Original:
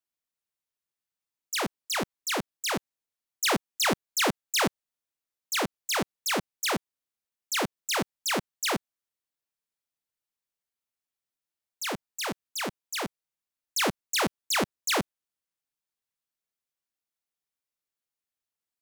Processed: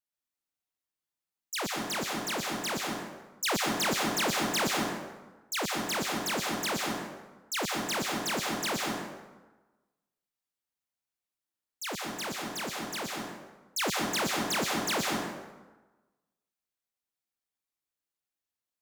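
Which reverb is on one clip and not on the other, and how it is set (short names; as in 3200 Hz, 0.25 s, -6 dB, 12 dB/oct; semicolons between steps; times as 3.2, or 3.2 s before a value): plate-style reverb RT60 1.2 s, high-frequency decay 0.65×, pre-delay 0.105 s, DRR -0.5 dB; gain -4.5 dB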